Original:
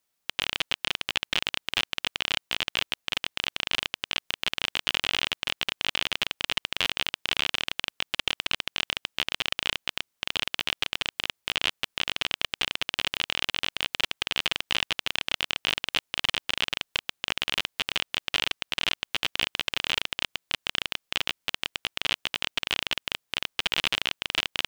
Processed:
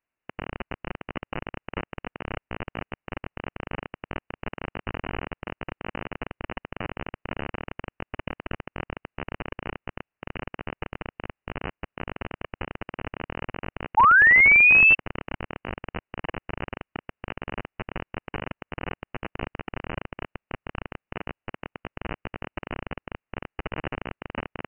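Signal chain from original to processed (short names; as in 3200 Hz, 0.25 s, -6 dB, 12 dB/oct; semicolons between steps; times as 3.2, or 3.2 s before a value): painted sound fall, 13.97–14.95, 230–2100 Hz -12 dBFS; inverted band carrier 2900 Hz; gain -2.5 dB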